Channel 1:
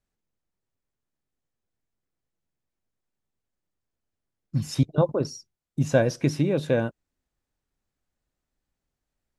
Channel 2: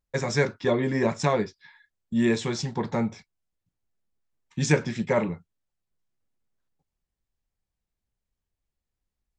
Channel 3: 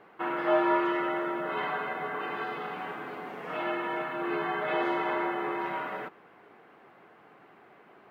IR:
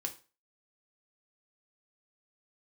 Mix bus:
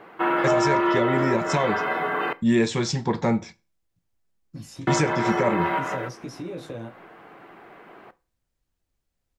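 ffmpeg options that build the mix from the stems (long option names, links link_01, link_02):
-filter_complex "[0:a]alimiter=limit=-16.5dB:level=0:latency=1,acrossover=split=280|1200|3300[link_01][link_02][link_03][link_04];[link_01]acompressor=threshold=-34dB:ratio=4[link_05];[link_02]acompressor=threshold=-31dB:ratio=4[link_06];[link_03]acompressor=threshold=-54dB:ratio=4[link_07];[link_04]acompressor=threshold=-42dB:ratio=4[link_08];[link_05][link_06][link_07][link_08]amix=inputs=4:normalize=0,flanger=delay=15:depth=3.9:speed=0.35,volume=-11dB,asplit=3[link_09][link_10][link_11];[link_10]volume=-4dB[link_12];[1:a]adelay=300,volume=-5dB,asplit=2[link_13][link_14];[link_14]volume=-7dB[link_15];[2:a]volume=-1dB,asplit=3[link_16][link_17][link_18];[link_16]atrim=end=2.33,asetpts=PTS-STARTPTS,afade=type=out:start_time=2.326:duration=0.004:curve=hsin[link_19];[link_17]atrim=start=2.33:end=4.87,asetpts=PTS-STARTPTS,volume=0[link_20];[link_18]atrim=start=4.87,asetpts=PTS-STARTPTS,afade=type=in:duration=0.004:curve=hsin[link_21];[link_19][link_20][link_21]concat=n=3:v=0:a=1,asplit=2[link_22][link_23];[link_23]volume=-6dB[link_24];[link_11]apad=whole_len=357511[link_25];[link_22][link_25]sidechaincompress=threshold=-50dB:ratio=8:attack=49:release=139[link_26];[3:a]atrim=start_sample=2205[link_27];[link_12][link_15][link_24]amix=inputs=3:normalize=0[link_28];[link_28][link_27]afir=irnorm=-1:irlink=0[link_29];[link_09][link_13][link_26][link_29]amix=inputs=4:normalize=0,acontrast=72,alimiter=limit=-11.5dB:level=0:latency=1:release=264"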